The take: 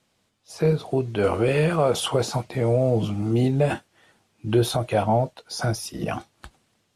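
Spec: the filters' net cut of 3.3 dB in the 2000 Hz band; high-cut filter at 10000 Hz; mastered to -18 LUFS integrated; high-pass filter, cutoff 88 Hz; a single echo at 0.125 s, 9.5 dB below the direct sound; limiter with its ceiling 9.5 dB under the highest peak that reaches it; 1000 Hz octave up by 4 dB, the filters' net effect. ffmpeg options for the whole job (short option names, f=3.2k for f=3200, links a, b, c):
-af "highpass=88,lowpass=10k,equalizer=f=1k:t=o:g=7.5,equalizer=f=2k:t=o:g=-8,alimiter=limit=-16dB:level=0:latency=1,aecho=1:1:125:0.335,volume=8dB"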